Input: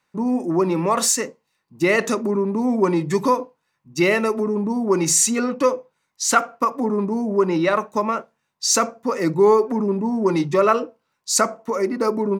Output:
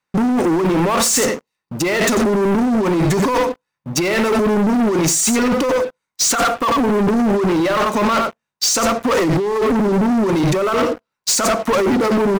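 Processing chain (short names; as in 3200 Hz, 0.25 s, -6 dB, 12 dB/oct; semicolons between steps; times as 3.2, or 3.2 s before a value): echo 89 ms -12.5 dB; negative-ratio compressor -25 dBFS, ratio -1; sample leveller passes 5; gain -3 dB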